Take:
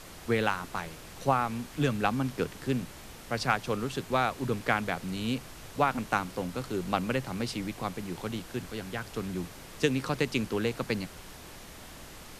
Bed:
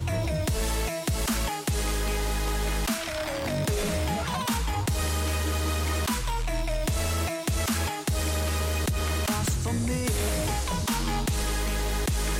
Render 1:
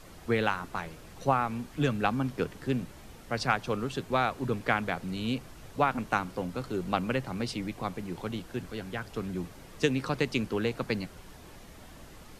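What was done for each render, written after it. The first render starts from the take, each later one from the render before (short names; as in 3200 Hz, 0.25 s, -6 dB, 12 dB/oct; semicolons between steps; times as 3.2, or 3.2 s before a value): denoiser 7 dB, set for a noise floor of -47 dBFS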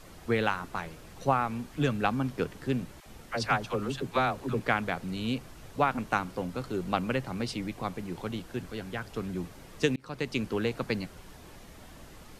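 3–4.6 dispersion lows, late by 61 ms, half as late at 590 Hz; 9.96–10.59 fade in equal-power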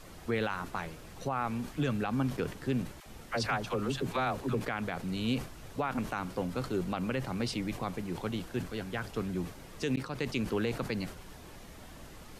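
limiter -21.5 dBFS, peak gain reduction 11 dB; sustainer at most 130 dB/s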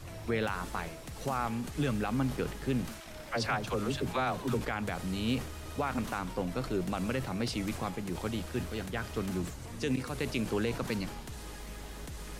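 add bed -17.5 dB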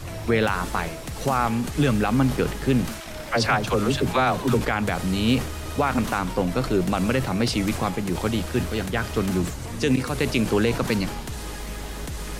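gain +10.5 dB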